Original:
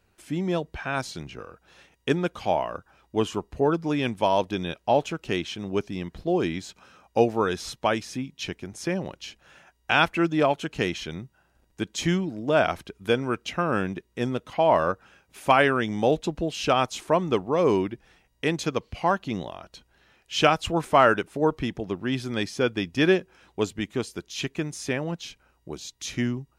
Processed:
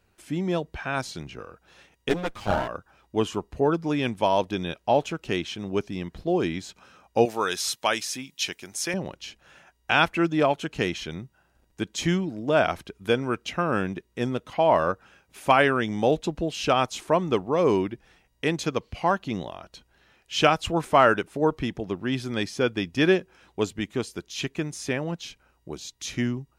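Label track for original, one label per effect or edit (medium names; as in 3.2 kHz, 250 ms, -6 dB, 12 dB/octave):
2.090000	2.680000	comb filter that takes the minimum delay 9.8 ms
7.250000	8.940000	tilt EQ +3.5 dB/octave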